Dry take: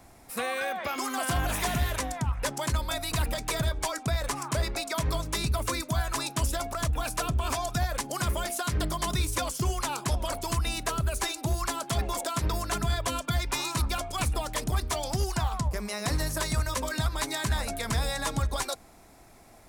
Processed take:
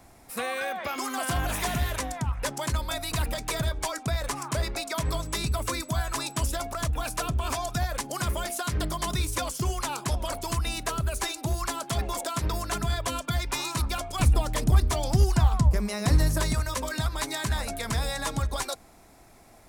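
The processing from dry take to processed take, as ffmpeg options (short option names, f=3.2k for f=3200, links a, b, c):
-filter_complex "[0:a]asettb=1/sr,asplit=3[a][b][c];[a]atrim=end=5.054[d];[b]atrim=start=5.05:end=6.48,asetpts=PTS-STARTPTS,afade=t=in:d=0.004:c=qsin,afade=t=out:st=1.426:d=0.004:c=qsin,aeval=exprs='val(0)+0.00282*sin(2*PI*7900*n/s)':c=same[e];[c]atrim=start=6.476[f];[d][e]acrossfade=d=0.004:c1=hsin:c2=qsin[g];[g][f]acrossfade=d=0.004:c1=qsin:c2=hsin,asettb=1/sr,asplit=3[h][i][j];[h]atrim=end=14.194[k];[i]atrim=start=14.19:end=16.53,asetpts=PTS-STARTPTS,afade=t=in:d=0.004:c=qsin,afade=t=out:st=2.336:d=0.004:c=qsin,lowshelf=f=320:g=9.5[l];[j]atrim=start=16.526[m];[k][l]acrossfade=d=0.004:c1=hsin:c2=qsin[n];[n][m]acrossfade=d=0.004:c1=qsin:c2=hsin"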